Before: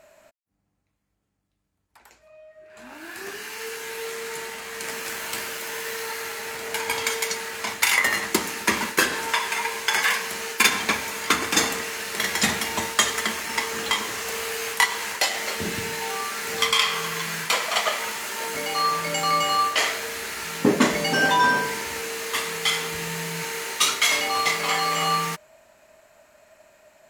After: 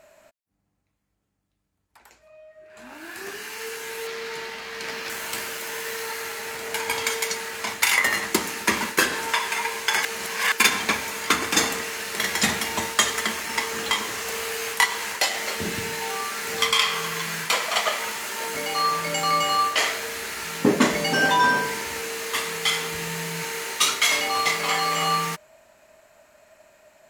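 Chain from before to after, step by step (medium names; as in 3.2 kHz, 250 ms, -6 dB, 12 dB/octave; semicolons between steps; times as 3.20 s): 4.07–5.10 s: resonant high shelf 6.3 kHz -8 dB, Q 1.5; 10.05–10.52 s: reverse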